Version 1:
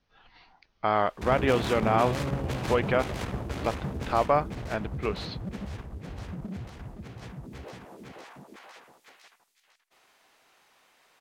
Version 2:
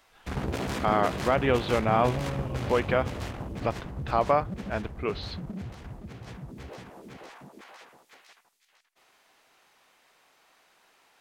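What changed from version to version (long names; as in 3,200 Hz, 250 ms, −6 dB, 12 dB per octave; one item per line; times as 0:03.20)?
first sound: entry −0.95 s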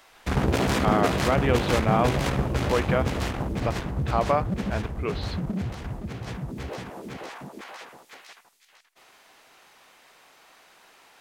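first sound +8.0 dB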